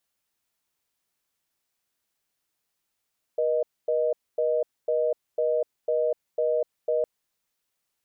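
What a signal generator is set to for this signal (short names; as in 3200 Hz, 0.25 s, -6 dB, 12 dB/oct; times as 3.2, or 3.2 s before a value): call progress tone reorder tone, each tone -24 dBFS 3.66 s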